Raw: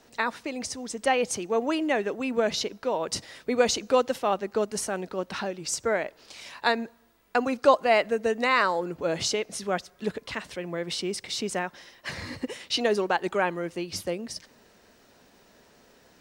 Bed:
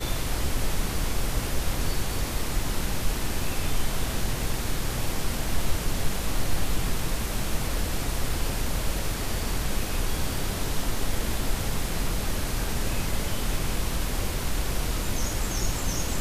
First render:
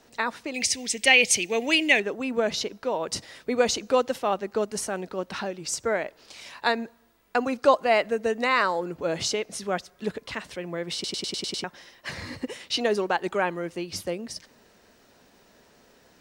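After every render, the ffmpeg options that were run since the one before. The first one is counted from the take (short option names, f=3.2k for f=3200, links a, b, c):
-filter_complex "[0:a]asettb=1/sr,asplit=3[a][b][c];[a]atrim=end=0.544[d];[b]atrim=start=0.54:end=2,asetpts=PTS-STARTPTS,afade=t=in:d=0.004:c=qsin,afade=t=out:st=1.456:d=0.004:c=qsin,highshelf=f=1.7k:t=q:w=3:g=9.5[e];[c]atrim=start=1.996[f];[d][e]acrossfade=d=0.004:c1=hsin:c2=qsin[g];[g][f]acrossfade=d=0.004:c1=qsin:c2=hsin,asplit=8[h][i][j][k][l][m][n][o];[h]atrim=end=11.042[p];[i]atrim=start=10.938:end=11.042[q];[j]atrim=start=10.938:end=11.042[r];[k]atrim=start=10.938:end=11.042[s];[l]atrim=start=10.938:end=11.042[t];[m]atrim=start=10.938:end=11.042[u];[n]atrim=start=10.938:end=11.042[v];[o]atrim=start=11.638[w];[p][q]acrossfade=d=0.004:c1=hsin:c2=hsin[x];[x][r]acrossfade=d=0.004:c1=hsin:c2=hsin[y];[y][s]acrossfade=d=0.004:c1=hsin:c2=hsin[z];[z][t]acrossfade=d=0.004:c1=hsin:c2=hsin[aa];[aa][u]acrossfade=d=0.004:c1=hsin:c2=hsin[ab];[ab][v]acrossfade=d=0.004:c1=hsin:c2=hsin[ac];[ac][w]acrossfade=d=0.004:c1=hsin:c2=hsin"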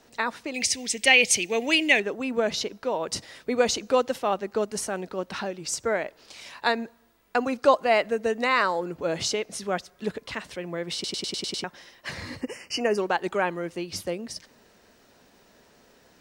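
-filter_complex "[0:a]asettb=1/sr,asplit=3[a][b][c];[a]atrim=end=12.414[d];[b]atrim=start=12.41:end=12.98,asetpts=PTS-STARTPTS,afade=t=in:d=0.004:c=qsin,afade=t=out:st=0.566:d=0.004:c=qsin,asuperstop=centerf=3700:order=12:qfactor=2.3[e];[c]atrim=start=12.976[f];[d][e]acrossfade=d=0.004:c1=hsin:c2=qsin[g];[g][f]acrossfade=d=0.004:c1=qsin:c2=hsin"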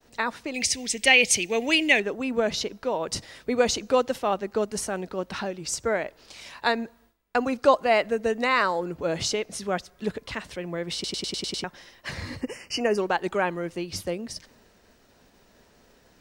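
-af "agate=range=-33dB:threshold=-55dB:ratio=3:detection=peak,lowshelf=f=85:g=11"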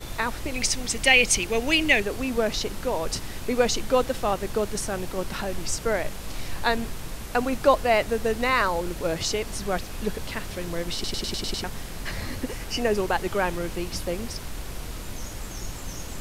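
-filter_complex "[1:a]volume=-7.5dB[a];[0:a][a]amix=inputs=2:normalize=0"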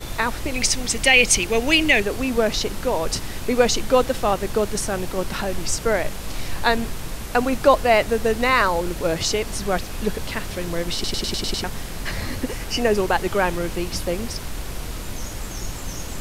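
-af "volume=4.5dB,alimiter=limit=-3dB:level=0:latency=1"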